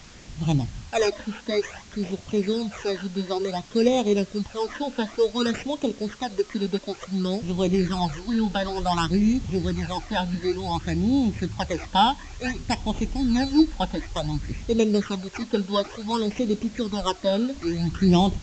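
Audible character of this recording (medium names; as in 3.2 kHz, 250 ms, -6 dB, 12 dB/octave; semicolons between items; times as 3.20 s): aliases and images of a low sample rate 4.3 kHz, jitter 0%; phasing stages 12, 0.56 Hz, lowest notch 110–1700 Hz; a quantiser's noise floor 8-bit, dither triangular; SBC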